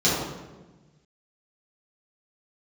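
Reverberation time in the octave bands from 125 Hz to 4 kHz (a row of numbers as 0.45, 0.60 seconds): 2.0, 1.6, 1.3, 1.1, 0.95, 0.80 seconds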